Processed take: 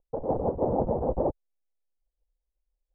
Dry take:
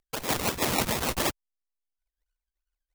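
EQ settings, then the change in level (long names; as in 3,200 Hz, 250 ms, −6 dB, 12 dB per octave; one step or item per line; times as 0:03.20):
Chebyshev low-pass filter 850 Hz, order 4
low-shelf EQ 74 Hz +8.5 dB
parametric band 520 Hz +10 dB 0.6 octaves
0.0 dB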